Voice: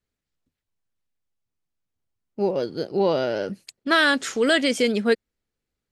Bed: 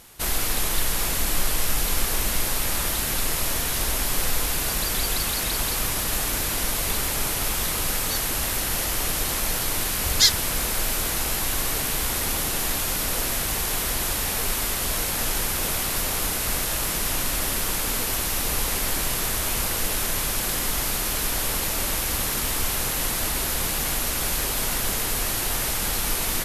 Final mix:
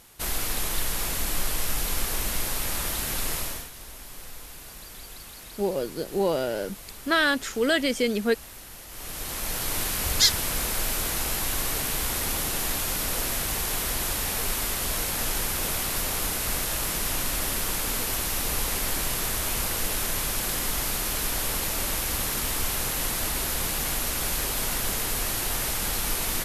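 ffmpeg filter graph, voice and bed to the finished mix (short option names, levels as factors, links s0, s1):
-filter_complex "[0:a]adelay=3200,volume=0.668[s0];[1:a]volume=3.76,afade=t=out:st=3.35:d=0.35:silence=0.199526,afade=t=in:st=8.88:d=0.9:silence=0.16788[s1];[s0][s1]amix=inputs=2:normalize=0"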